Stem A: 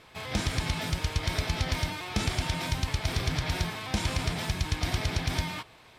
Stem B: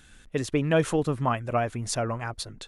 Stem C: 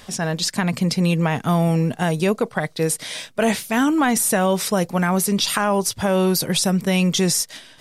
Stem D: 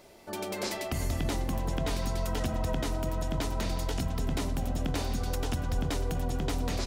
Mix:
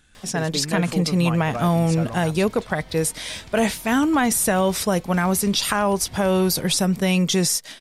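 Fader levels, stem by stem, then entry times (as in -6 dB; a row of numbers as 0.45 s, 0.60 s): -15.5 dB, -4.5 dB, -1.0 dB, -17.5 dB; 1.20 s, 0.00 s, 0.15 s, 0.25 s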